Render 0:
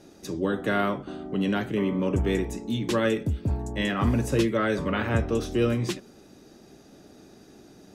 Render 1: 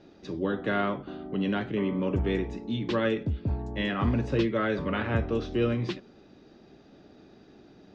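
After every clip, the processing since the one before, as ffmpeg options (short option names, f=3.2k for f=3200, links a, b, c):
-af "lowpass=f=4.4k:w=0.5412,lowpass=f=4.4k:w=1.3066,volume=-2.5dB"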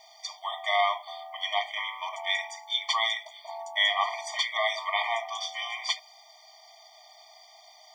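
-af "lowshelf=f=400:t=q:w=3:g=-10,crystalizer=i=9.5:c=0,afftfilt=real='re*eq(mod(floor(b*sr/1024/610),2),1)':imag='im*eq(mod(floor(b*sr/1024/610),2),1)':win_size=1024:overlap=0.75,volume=1.5dB"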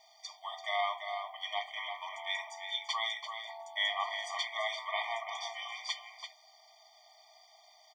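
-filter_complex "[0:a]asplit=2[a][b];[b]adelay=338.2,volume=-6dB,highshelf=f=4k:g=-7.61[c];[a][c]amix=inputs=2:normalize=0,volume=-8dB"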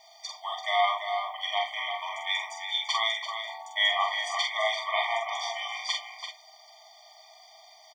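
-filter_complex "[0:a]asplit=2[a][b];[b]adelay=45,volume=-4dB[c];[a][c]amix=inputs=2:normalize=0,volume=6dB"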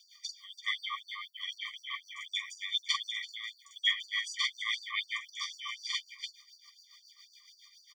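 -af "tremolo=f=7.2:d=0.59,afftfilt=real='re*gte(b*sr/1024,990*pow(4300/990,0.5+0.5*sin(2*PI*4*pts/sr)))':imag='im*gte(b*sr/1024,990*pow(4300/990,0.5+0.5*sin(2*PI*4*pts/sr)))':win_size=1024:overlap=0.75"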